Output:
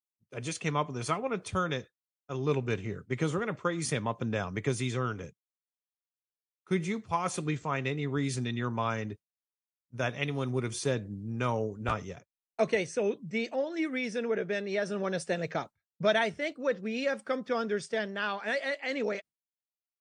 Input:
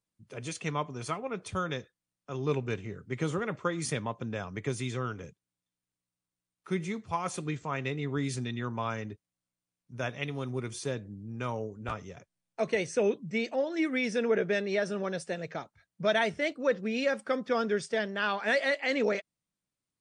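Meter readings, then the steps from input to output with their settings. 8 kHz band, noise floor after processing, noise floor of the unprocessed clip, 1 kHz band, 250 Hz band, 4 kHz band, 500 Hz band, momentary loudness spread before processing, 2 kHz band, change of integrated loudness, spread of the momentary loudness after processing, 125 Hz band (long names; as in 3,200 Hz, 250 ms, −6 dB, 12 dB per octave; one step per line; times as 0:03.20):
+1.5 dB, below −85 dBFS, below −85 dBFS, +1.0 dB, +0.5 dB, 0.0 dB, −0.5 dB, 11 LU, −1.0 dB, 0.0 dB, 6 LU, +2.0 dB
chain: downward expander −41 dBFS
speech leveller within 5 dB 0.5 s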